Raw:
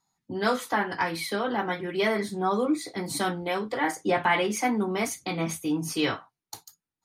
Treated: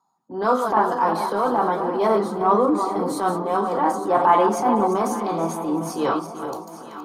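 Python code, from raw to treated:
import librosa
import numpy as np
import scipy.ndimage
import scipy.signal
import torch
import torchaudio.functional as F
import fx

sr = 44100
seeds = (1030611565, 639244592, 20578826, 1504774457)

p1 = fx.reverse_delay_fb(x, sr, ms=190, feedback_pct=46, wet_db=-9.0)
p2 = scipy.signal.sosfilt(scipy.signal.butter(2, 230.0, 'highpass', fs=sr, output='sos'), p1)
p3 = fx.high_shelf_res(p2, sr, hz=1500.0, db=-10.5, q=3.0)
p4 = fx.transient(p3, sr, attack_db=-8, sustain_db=2)
p5 = p4 + fx.echo_alternate(p4, sr, ms=430, hz=910.0, feedback_pct=64, wet_db=-9.5, dry=0)
y = p5 * librosa.db_to_amplitude(6.5)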